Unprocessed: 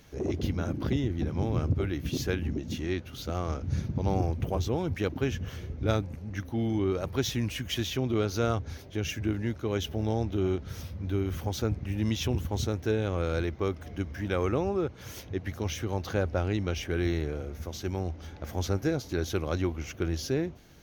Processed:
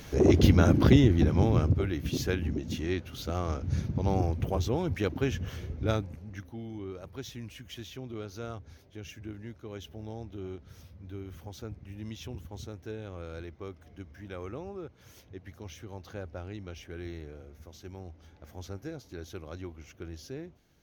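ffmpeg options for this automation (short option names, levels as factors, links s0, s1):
-af "volume=3.16,afade=t=out:st=0.78:d=1.05:silence=0.316228,afade=t=out:st=5.7:d=0.92:silence=0.251189"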